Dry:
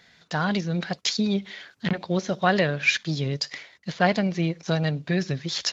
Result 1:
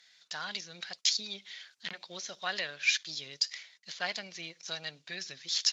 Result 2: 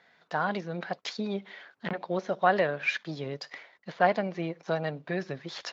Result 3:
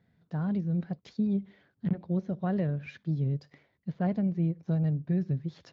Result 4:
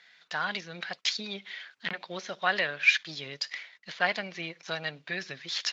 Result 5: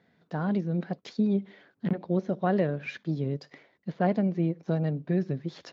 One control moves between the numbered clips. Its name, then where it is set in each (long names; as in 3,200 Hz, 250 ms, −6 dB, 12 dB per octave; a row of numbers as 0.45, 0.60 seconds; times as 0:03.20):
resonant band-pass, frequency: 6,100, 810, 110, 2,300, 280 Hertz